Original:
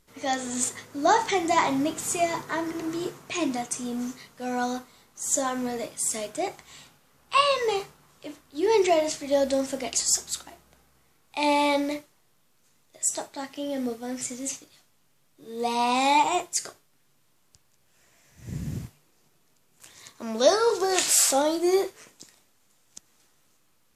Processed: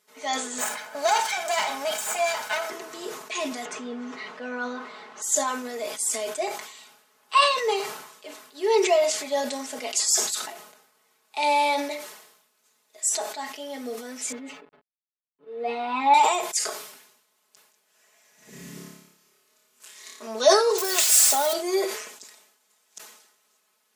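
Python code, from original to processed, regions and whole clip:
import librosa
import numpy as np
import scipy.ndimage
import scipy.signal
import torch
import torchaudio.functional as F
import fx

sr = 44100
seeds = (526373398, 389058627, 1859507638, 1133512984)

y = fx.chain(x, sr, fx.lower_of_two(delay_ms=1.3),
    fx.low_shelf(hz=400.0, db=-6.5),
    fx.band_squash(depth_pct=70), at=(0.58, 2.7))
y = fx.chain(y, sr, fx.lowpass(hz=2500.0, slope=12),
    fx.env_flatten(amount_pct=50), at=(3.65, 5.22))
y = fx.chain(y, sr, fx.backlash(play_db=-42.5),
    fx.air_absorb(metres=480.0),
    fx.comb(ms=7.0, depth=0.85), at=(14.32, 16.14))
y = fx.chain(y, sr, fx.peak_eq(hz=770.0, db=-8.0, octaves=0.44),
    fx.room_flutter(wall_m=4.9, rt60_s=0.69), at=(18.5, 20.27))
y = fx.chain(y, sr, fx.crossing_spikes(level_db=-20.0),
    fx.low_shelf(hz=290.0, db=-7.0), at=(20.78, 21.53))
y = scipy.signal.sosfilt(scipy.signal.butter(2, 430.0, 'highpass', fs=sr, output='sos'), y)
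y = y + 0.85 * np.pad(y, (int(4.7 * sr / 1000.0), 0))[:len(y)]
y = fx.sustainer(y, sr, db_per_s=67.0)
y = y * 10.0 ** (-1.5 / 20.0)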